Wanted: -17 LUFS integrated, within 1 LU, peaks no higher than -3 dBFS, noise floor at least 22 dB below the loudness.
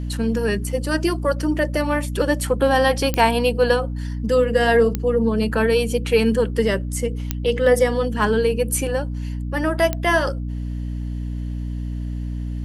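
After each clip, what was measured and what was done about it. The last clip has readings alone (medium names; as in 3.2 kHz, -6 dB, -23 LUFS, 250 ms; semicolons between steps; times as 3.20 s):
clicks found 4; hum 60 Hz; highest harmonic 300 Hz; hum level -24 dBFS; loudness -21.0 LUFS; peak level -2.0 dBFS; loudness target -17.0 LUFS
-> de-click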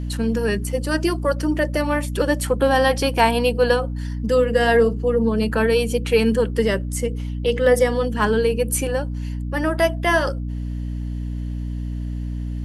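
clicks found 0; hum 60 Hz; highest harmonic 300 Hz; hum level -24 dBFS
-> hum notches 60/120/180/240/300 Hz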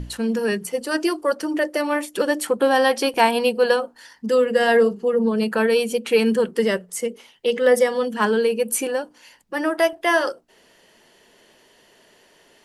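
hum not found; loudness -20.5 LUFS; peak level -2.5 dBFS; loudness target -17.0 LUFS
-> trim +3.5 dB; peak limiter -3 dBFS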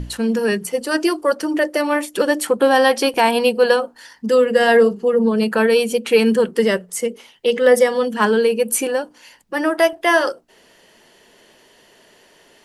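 loudness -17.0 LUFS; peak level -3.0 dBFS; noise floor -53 dBFS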